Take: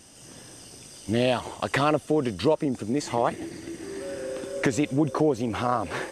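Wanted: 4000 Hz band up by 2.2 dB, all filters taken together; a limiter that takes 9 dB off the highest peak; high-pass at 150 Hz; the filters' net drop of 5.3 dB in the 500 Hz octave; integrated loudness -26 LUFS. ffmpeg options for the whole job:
-af "highpass=150,equalizer=f=500:t=o:g=-6.5,equalizer=f=4k:t=o:g=3,volume=5.5dB,alimiter=limit=-13.5dB:level=0:latency=1"

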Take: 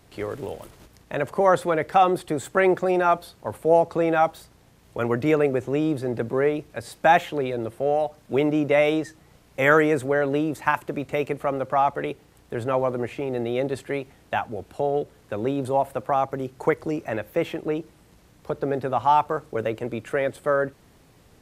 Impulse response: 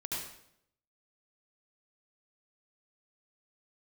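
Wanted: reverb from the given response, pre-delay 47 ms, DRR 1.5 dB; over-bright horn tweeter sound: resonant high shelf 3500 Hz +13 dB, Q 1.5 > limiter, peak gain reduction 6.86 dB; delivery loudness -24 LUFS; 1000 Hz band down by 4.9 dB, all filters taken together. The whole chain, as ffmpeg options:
-filter_complex "[0:a]equalizer=f=1k:t=o:g=-6,asplit=2[a][b];[1:a]atrim=start_sample=2205,adelay=47[c];[b][c]afir=irnorm=-1:irlink=0,volume=-4dB[d];[a][d]amix=inputs=2:normalize=0,highshelf=f=3.5k:t=q:w=1.5:g=13,volume=1dB,alimiter=limit=-12.5dB:level=0:latency=1"

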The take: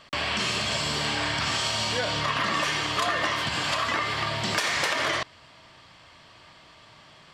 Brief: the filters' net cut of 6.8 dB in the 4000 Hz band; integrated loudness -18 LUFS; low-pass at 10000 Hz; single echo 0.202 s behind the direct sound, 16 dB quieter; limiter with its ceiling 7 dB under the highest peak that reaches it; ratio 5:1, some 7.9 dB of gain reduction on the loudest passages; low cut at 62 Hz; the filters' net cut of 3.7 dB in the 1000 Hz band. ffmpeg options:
-af "highpass=62,lowpass=10k,equalizer=f=1k:t=o:g=-4,equalizer=f=4k:t=o:g=-9,acompressor=threshold=-34dB:ratio=5,alimiter=level_in=6dB:limit=-24dB:level=0:latency=1,volume=-6dB,aecho=1:1:202:0.158,volume=20.5dB"

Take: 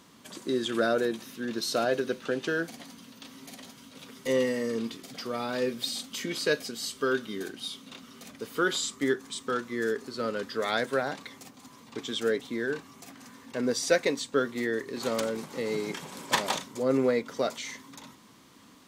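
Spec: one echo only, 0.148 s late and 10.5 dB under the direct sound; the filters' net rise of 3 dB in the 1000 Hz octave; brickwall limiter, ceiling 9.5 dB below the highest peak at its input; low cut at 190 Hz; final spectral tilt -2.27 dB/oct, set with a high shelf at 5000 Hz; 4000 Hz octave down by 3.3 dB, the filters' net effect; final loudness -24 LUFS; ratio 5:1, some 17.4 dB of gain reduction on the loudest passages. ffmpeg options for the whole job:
-af "highpass=190,equalizer=f=1k:t=o:g=4.5,equalizer=f=4k:t=o:g=-6.5,highshelf=f=5k:g=5,acompressor=threshold=-38dB:ratio=5,alimiter=level_in=8dB:limit=-24dB:level=0:latency=1,volume=-8dB,aecho=1:1:148:0.299,volume=18.5dB"

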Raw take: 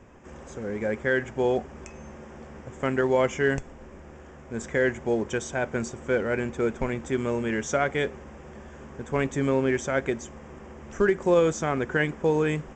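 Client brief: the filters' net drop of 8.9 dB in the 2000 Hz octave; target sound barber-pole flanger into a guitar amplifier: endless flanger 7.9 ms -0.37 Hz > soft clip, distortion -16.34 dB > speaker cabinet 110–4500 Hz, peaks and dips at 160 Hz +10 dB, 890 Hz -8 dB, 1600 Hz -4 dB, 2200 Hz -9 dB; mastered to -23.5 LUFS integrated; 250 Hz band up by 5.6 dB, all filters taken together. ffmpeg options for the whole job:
-filter_complex "[0:a]equalizer=f=250:t=o:g=6,equalizer=f=2k:t=o:g=-5,asplit=2[a][b];[b]adelay=7.9,afreqshift=-0.37[c];[a][c]amix=inputs=2:normalize=1,asoftclip=threshold=-19dB,highpass=110,equalizer=f=160:t=q:w=4:g=10,equalizer=f=890:t=q:w=4:g=-8,equalizer=f=1.6k:t=q:w=4:g=-4,equalizer=f=2.2k:t=q:w=4:g=-9,lowpass=f=4.5k:w=0.5412,lowpass=f=4.5k:w=1.3066,volume=6dB"

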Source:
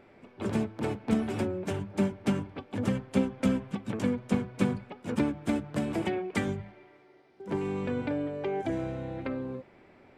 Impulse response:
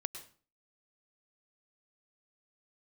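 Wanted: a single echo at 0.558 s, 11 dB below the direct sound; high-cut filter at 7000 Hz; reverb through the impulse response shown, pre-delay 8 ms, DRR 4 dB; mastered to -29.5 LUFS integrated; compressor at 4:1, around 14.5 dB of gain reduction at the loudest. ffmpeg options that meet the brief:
-filter_complex "[0:a]lowpass=7k,acompressor=threshold=-39dB:ratio=4,aecho=1:1:558:0.282,asplit=2[a][b];[1:a]atrim=start_sample=2205,adelay=8[c];[b][c]afir=irnorm=-1:irlink=0,volume=-3.5dB[d];[a][d]amix=inputs=2:normalize=0,volume=11dB"

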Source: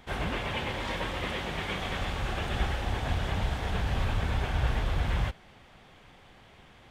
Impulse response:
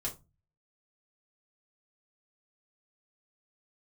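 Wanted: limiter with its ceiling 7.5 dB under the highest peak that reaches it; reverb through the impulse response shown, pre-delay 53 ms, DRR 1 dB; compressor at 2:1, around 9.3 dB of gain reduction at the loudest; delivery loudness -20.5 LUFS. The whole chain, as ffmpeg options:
-filter_complex "[0:a]acompressor=threshold=-41dB:ratio=2,alimiter=level_in=9dB:limit=-24dB:level=0:latency=1,volume=-9dB,asplit=2[a][b];[1:a]atrim=start_sample=2205,adelay=53[c];[b][c]afir=irnorm=-1:irlink=0,volume=-2.5dB[d];[a][d]amix=inputs=2:normalize=0,volume=18dB"

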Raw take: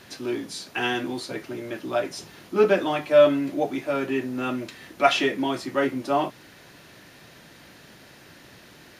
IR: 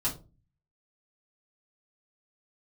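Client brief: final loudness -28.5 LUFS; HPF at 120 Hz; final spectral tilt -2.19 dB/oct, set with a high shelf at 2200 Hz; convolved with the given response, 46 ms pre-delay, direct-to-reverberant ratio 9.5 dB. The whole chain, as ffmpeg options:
-filter_complex "[0:a]highpass=120,highshelf=f=2.2k:g=5,asplit=2[a][b];[1:a]atrim=start_sample=2205,adelay=46[c];[b][c]afir=irnorm=-1:irlink=0,volume=-15.5dB[d];[a][d]amix=inputs=2:normalize=0,volume=-5dB"

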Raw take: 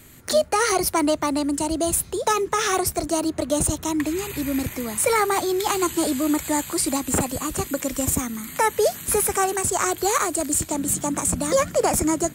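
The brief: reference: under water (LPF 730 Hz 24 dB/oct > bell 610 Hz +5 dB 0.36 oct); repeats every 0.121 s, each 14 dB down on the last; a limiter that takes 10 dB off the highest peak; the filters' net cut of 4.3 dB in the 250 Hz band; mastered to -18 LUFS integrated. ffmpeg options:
-af "equalizer=f=250:t=o:g=-6,alimiter=limit=-19.5dB:level=0:latency=1,lowpass=f=730:w=0.5412,lowpass=f=730:w=1.3066,equalizer=f=610:t=o:w=0.36:g=5,aecho=1:1:121|242:0.2|0.0399,volume=13dB"

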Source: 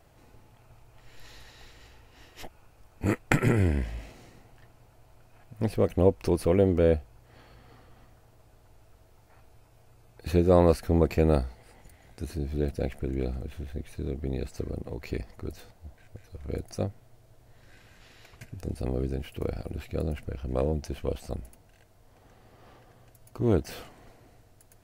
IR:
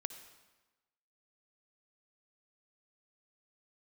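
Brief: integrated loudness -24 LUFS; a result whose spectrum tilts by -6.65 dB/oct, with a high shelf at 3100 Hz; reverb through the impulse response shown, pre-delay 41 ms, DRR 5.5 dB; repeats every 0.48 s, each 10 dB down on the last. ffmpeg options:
-filter_complex "[0:a]highshelf=f=3.1k:g=8.5,aecho=1:1:480|960|1440|1920:0.316|0.101|0.0324|0.0104,asplit=2[a][b];[1:a]atrim=start_sample=2205,adelay=41[c];[b][c]afir=irnorm=-1:irlink=0,volume=-4dB[d];[a][d]amix=inputs=2:normalize=0,volume=3.5dB"

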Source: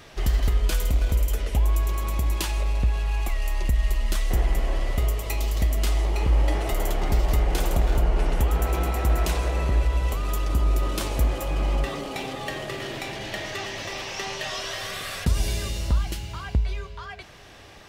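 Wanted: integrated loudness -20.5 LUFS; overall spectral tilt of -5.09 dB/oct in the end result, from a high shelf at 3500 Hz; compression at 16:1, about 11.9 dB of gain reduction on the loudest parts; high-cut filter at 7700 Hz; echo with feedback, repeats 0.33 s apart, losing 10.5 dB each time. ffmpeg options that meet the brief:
-af "lowpass=7.7k,highshelf=f=3.5k:g=-5,acompressor=threshold=-28dB:ratio=16,aecho=1:1:330|660|990:0.299|0.0896|0.0269,volume=13.5dB"

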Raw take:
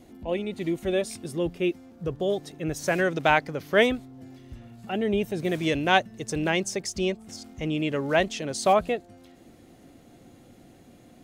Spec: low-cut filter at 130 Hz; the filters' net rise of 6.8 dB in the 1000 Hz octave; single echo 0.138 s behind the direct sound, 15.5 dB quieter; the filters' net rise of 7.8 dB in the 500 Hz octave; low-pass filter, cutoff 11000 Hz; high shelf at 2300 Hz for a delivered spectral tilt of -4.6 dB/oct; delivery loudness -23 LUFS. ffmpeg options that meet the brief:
-af "highpass=130,lowpass=11k,equalizer=f=500:t=o:g=8.5,equalizer=f=1k:t=o:g=7,highshelf=f=2.3k:g=-9,aecho=1:1:138:0.168,volume=-2dB"

